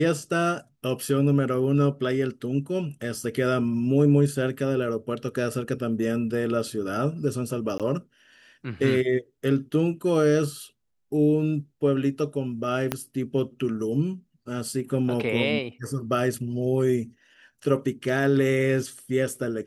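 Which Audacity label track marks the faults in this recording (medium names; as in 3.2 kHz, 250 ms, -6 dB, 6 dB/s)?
7.780000	7.800000	dropout 17 ms
12.920000	12.920000	pop -9 dBFS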